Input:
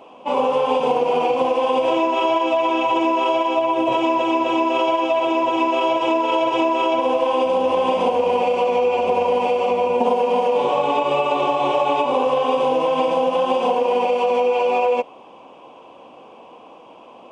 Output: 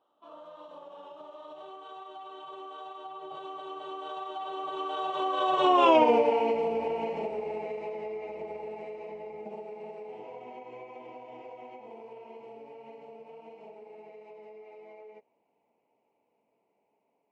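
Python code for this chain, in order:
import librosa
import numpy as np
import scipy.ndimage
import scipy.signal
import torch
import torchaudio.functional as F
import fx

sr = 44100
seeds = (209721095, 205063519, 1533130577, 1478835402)

y = fx.doppler_pass(x, sr, speed_mps=50, closest_m=11.0, pass_at_s=5.91)
y = fx.high_shelf(y, sr, hz=5800.0, db=-10.0)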